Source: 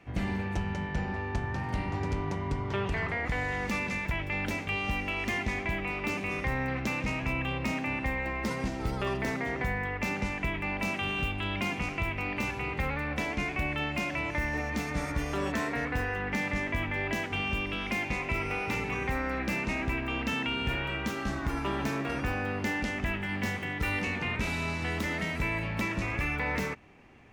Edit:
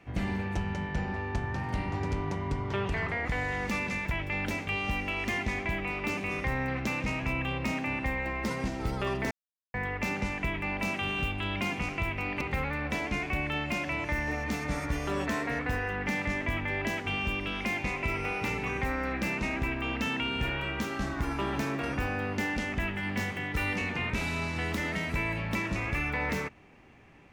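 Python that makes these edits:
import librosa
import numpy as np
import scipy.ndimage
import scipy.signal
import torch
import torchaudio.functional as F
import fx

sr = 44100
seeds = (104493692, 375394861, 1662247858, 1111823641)

y = fx.edit(x, sr, fx.silence(start_s=9.31, length_s=0.43),
    fx.cut(start_s=12.41, length_s=0.26), tone=tone)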